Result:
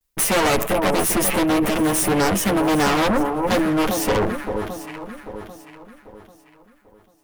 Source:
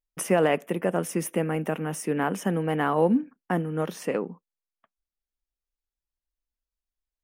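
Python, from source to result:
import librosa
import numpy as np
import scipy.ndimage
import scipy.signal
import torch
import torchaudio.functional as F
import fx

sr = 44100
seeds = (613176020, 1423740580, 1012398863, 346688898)

p1 = fx.lower_of_two(x, sr, delay_ms=9.3)
p2 = fx.high_shelf(p1, sr, hz=8700.0, db=8.0)
p3 = fx.echo_alternate(p2, sr, ms=396, hz=1100.0, feedback_pct=59, wet_db=-10.5)
p4 = fx.fold_sine(p3, sr, drive_db=15, ceiling_db=-11.5)
p5 = p3 + F.gain(torch.from_numpy(p4), -9.0).numpy()
p6 = fx.sustainer(p5, sr, db_per_s=81.0)
y = F.gain(torch.from_numpy(p6), 2.0).numpy()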